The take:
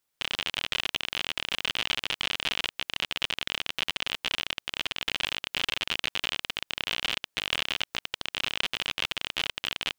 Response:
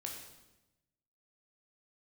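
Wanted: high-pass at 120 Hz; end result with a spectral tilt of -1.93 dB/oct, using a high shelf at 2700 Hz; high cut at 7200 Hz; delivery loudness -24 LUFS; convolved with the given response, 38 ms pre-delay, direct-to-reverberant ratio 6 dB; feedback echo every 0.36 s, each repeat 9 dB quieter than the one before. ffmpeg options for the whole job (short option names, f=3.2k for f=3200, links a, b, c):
-filter_complex "[0:a]highpass=120,lowpass=7.2k,highshelf=f=2.7k:g=-8.5,aecho=1:1:360|720|1080|1440:0.355|0.124|0.0435|0.0152,asplit=2[a][b];[1:a]atrim=start_sample=2205,adelay=38[c];[b][c]afir=irnorm=-1:irlink=0,volume=-4.5dB[d];[a][d]amix=inputs=2:normalize=0,volume=9dB"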